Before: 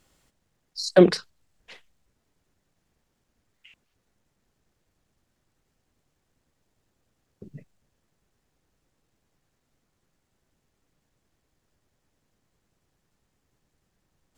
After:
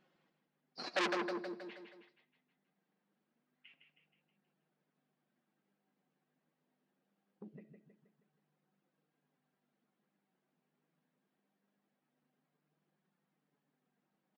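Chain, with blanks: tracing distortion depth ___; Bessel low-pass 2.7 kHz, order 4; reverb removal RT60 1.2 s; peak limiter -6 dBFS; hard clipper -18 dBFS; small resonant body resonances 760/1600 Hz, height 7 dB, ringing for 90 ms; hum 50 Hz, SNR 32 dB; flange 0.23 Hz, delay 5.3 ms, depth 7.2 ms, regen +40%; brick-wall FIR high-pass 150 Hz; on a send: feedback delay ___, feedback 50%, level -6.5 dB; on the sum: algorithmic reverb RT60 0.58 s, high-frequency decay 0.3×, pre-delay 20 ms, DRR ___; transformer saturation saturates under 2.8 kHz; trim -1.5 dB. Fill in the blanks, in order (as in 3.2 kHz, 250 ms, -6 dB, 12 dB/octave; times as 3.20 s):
0.075 ms, 159 ms, 15.5 dB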